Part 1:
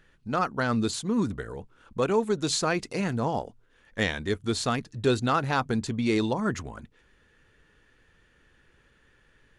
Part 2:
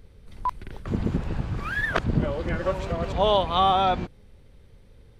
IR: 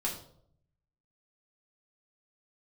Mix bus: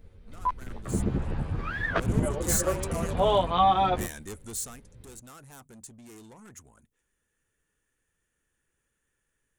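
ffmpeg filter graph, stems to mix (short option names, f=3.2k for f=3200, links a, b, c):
-filter_complex "[0:a]asoftclip=type=tanh:threshold=-28.5dB,aexciter=amount=10.8:drive=3:freq=6.4k,volume=-7dB,afade=t=in:st=1.7:d=0.51:silence=0.237137,afade=t=out:st=4.38:d=0.45:silence=0.281838[a];[1:a]lowpass=f=2.7k:p=1,asplit=2[b][c];[c]adelay=10.7,afreqshift=0.71[d];[b][d]amix=inputs=2:normalize=1,volume=1.5dB[e];[a][e]amix=inputs=2:normalize=0"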